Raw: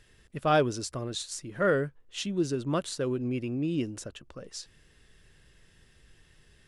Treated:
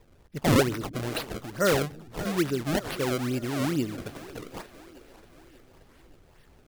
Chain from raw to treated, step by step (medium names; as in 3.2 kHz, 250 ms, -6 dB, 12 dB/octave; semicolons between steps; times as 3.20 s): decimation with a swept rate 28×, swing 160% 2.3 Hz; two-band feedback delay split 300 Hz, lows 173 ms, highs 584 ms, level -15.5 dB; warped record 78 rpm, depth 250 cents; trim +2 dB